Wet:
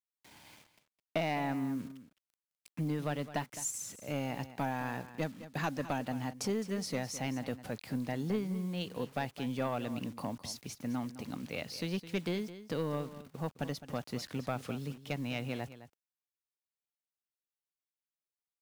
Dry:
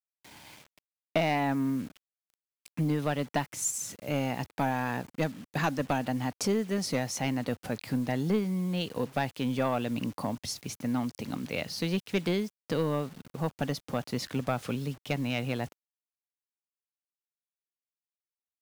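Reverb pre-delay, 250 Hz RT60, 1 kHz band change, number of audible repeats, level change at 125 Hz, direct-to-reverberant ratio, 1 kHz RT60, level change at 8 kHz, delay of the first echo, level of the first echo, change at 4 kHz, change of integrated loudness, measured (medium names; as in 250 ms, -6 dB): no reverb, no reverb, -6.0 dB, 1, -5.5 dB, no reverb, no reverb, -6.0 dB, 211 ms, -14.0 dB, -6.0 dB, -6.0 dB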